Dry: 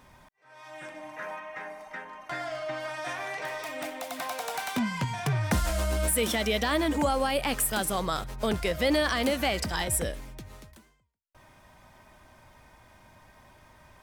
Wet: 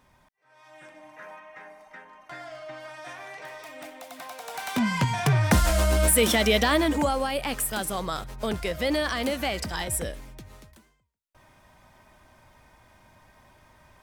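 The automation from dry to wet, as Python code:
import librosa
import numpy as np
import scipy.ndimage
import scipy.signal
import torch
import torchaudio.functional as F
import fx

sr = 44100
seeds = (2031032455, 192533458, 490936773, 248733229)

y = fx.gain(x, sr, db=fx.line((4.41, -6.0), (4.91, 6.0), (6.58, 6.0), (7.3, -1.0)))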